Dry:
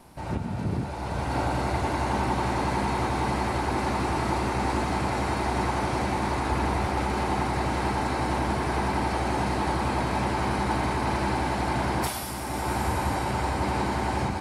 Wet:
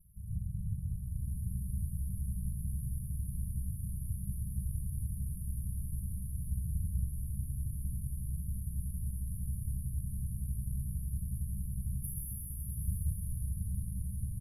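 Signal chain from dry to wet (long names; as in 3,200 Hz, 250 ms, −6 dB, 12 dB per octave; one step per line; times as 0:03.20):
lower of the sound and its delayed copy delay 2.8 ms
formants moved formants +3 semitones
low-pass filter 12,000 Hz 24 dB per octave
bouncing-ball delay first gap 130 ms, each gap 0.75×, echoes 5
brick-wall band-stop 200–9,500 Hz
echo with shifted repeats 223 ms, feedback 41%, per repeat −86 Hz, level −10.5 dB
level −2.5 dB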